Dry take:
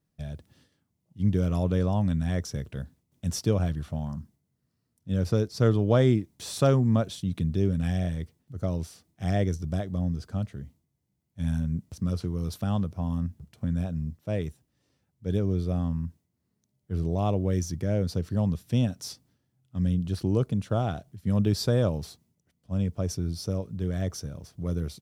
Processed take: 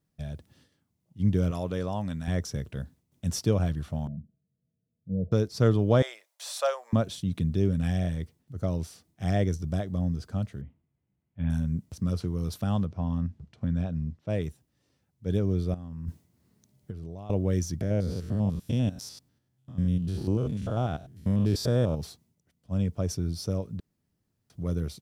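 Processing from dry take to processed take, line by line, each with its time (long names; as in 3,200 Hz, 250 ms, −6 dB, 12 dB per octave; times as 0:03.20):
0:01.51–0:02.28: low-shelf EQ 270 Hz −10 dB
0:04.07–0:05.32: Chebyshev low-pass with heavy ripple 670 Hz, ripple 9 dB
0:06.02–0:06.93: elliptic high-pass filter 560 Hz, stop band 50 dB
0:10.61–0:11.50: Butterworth low-pass 3,000 Hz
0:12.85–0:14.30: low-pass filter 4,800 Hz
0:15.74–0:17.30: compressor whose output falls as the input rises −38 dBFS
0:17.81–0:22.01: spectrum averaged block by block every 100 ms
0:23.80–0:24.50: fill with room tone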